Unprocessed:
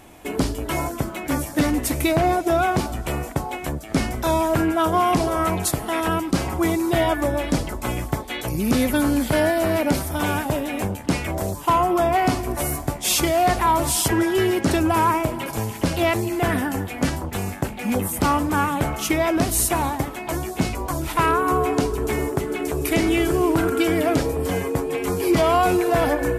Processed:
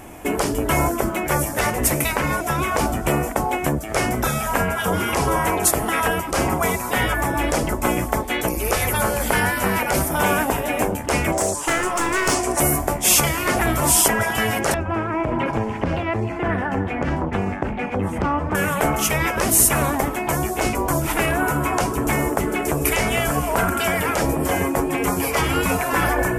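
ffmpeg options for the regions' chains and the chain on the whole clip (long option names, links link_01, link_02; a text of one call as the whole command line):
ffmpeg -i in.wav -filter_complex "[0:a]asettb=1/sr,asplit=3[link_01][link_02][link_03];[link_01]atrim=end=11.324[link_04];[link_02]atrim=start=11.32:end=12.6,asetpts=PTS-STARTPTS,afade=type=in:duration=0.004:curve=qsin,afade=type=out:start_time=1.276:duration=0.004:curve=qsin,lowpass=frequency=8800:width=0.5412,lowpass=frequency=8800:width=1.3066,bass=frequency=250:gain=-13,treble=frequency=4000:gain=11,aeval=exprs='clip(val(0),-1,0.0891)':channel_layout=same[link_05];[link_03]atrim=start=12.596[link_06];[link_04][link_05]acrossfade=duration=0.004:curve1=hsin:curve2=qsin[link_07];[link_07][link_06]acrossfade=duration=0.004:curve1=qsin:curve2=hsin,asettb=1/sr,asplit=3[link_08][link_09][link_10];[link_08]atrim=end=14.744[link_11];[link_09]atrim=start=14.74:end=18.55,asetpts=PTS-STARTPTS,afade=type=in:duration=0.004:curve=qsin,afade=type=out:start_time=3.806:duration=0.004:curve=qsin,lowpass=2700,acompressor=threshold=-23dB:ratio=10:attack=3.2:release=140:knee=1:detection=peak[link_12];[link_10]atrim=start=18.546[link_13];[link_11][link_12]acrossfade=duration=0.004:curve1=hsin:curve2=qsin[link_14];[link_14][link_13]acrossfade=duration=0.004:curve1=qsin:curve2=hsin,afftfilt=real='re*lt(hypot(re,im),0.355)':imag='im*lt(hypot(re,im),0.355)':win_size=1024:overlap=0.75,equalizer=frequency=4000:width=1.9:gain=-9.5,volume=7.5dB" out.wav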